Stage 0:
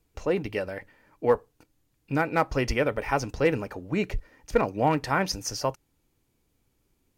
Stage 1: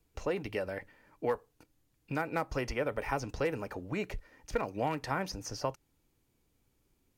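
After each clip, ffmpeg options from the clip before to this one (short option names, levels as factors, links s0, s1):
-filter_complex "[0:a]acrossover=split=530|1500|6500[s0][s1][s2][s3];[s0]acompressor=threshold=0.0224:ratio=4[s4];[s1]acompressor=threshold=0.0282:ratio=4[s5];[s2]acompressor=threshold=0.01:ratio=4[s6];[s3]acompressor=threshold=0.00251:ratio=4[s7];[s4][s5][s6][s7]amix=inputs=4:normalize=0,volume=0.75"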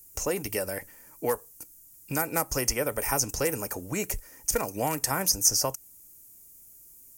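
-af "aexciter=amount=13.1:drive=3:freq=5700,highshelf=f=6300:g=5.5,volume=1.5"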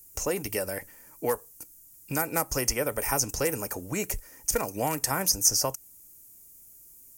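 -af anull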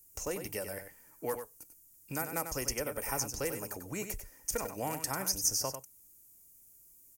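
-af "aecho=1:1:95:0.376,volume=0.398"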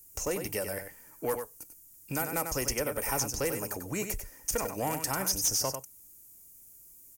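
-af "asoftclip=type=tanh:threshold=0.0473,volume=1.88"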